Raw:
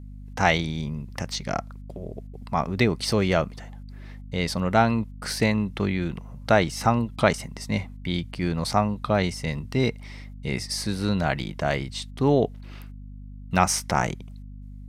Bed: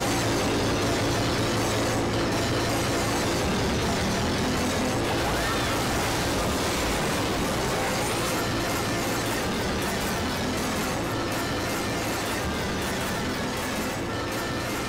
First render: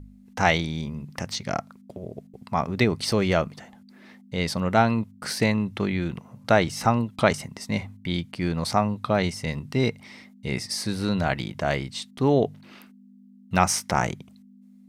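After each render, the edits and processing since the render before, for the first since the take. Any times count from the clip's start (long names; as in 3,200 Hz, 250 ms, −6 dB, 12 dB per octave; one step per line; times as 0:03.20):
hum removal 50 Hz, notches 3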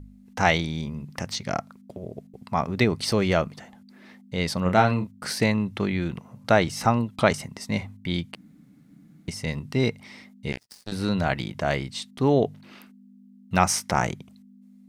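0:04.62–0:05.10: double-tracking delay 33 ms −6.5 dB
0:08.35–0:09.28: fill with room tone
0:10.52–0:10.92: power curve on the samples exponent 3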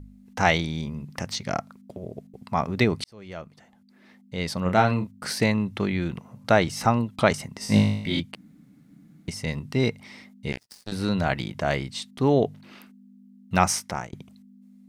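0:03.04–0:04.96: fade in
0:07.59–0:08.20: flutter between parallel walls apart 3.3 metres, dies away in 0.72 s
0:13.67–0:14.13: fade out, to −23.5 dB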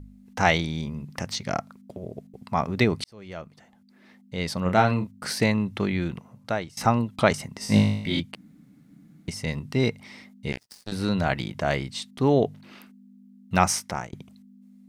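0:06.03–0:06.77: fade out, to −20.5 dB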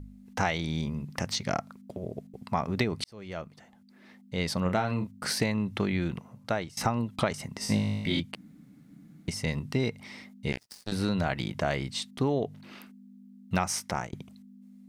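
downward compressor 10 to 1, threshold −23 dBFS, peak gain reduction 11 dB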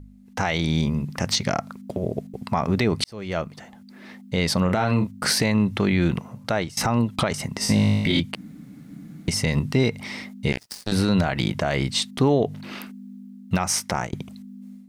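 automatic gain control gain up to 12 dB
brickwall limiter −10 dBFS, peak gain reduction 7.5 dB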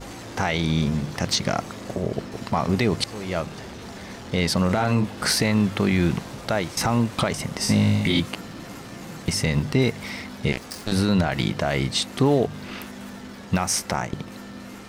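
mix in bed −13.5 dB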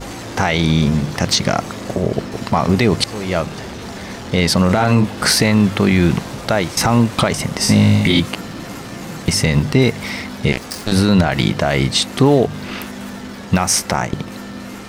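level +8 dB
brickwall limiter −3 dBFS, peak gain reduction 1.5 dB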